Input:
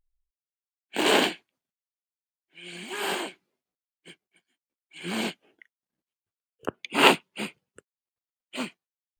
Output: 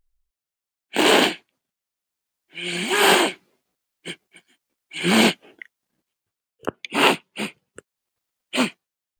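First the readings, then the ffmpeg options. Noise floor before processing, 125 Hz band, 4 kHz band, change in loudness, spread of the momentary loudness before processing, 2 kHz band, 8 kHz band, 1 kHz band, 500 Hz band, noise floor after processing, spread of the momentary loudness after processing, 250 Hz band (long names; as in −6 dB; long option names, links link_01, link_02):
below −85 dBFS, +10.0 dB, +6.5 dB, +6.5 dB, 21 LU, +6.5 dB, +8.5 dB, +5.5 dB, +6.5 dB, below −85 dBFS, 20 LU, +8.5 dB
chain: -filter_complex "[0:a]asplit=2[link_01][link_02];[link_02]alimiter=limit=-13dB:level=0:latency=1:release=126,volume=2.5dB[link_03];[link_01][link_03]amix=inputs=2:normalize=0,dynaudnorm=framelen=230:gausssize=7:maxgain=10dB,volume=-1dB"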